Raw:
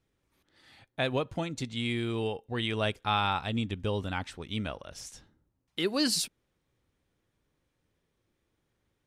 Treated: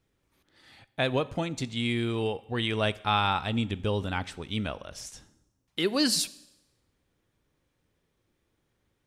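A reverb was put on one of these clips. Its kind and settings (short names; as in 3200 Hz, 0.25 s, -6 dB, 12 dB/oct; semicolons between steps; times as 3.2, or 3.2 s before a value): Schroeder reverb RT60 0.9 s, combs from 30 ms, DRR 18.5 dB; gain +2.5 dB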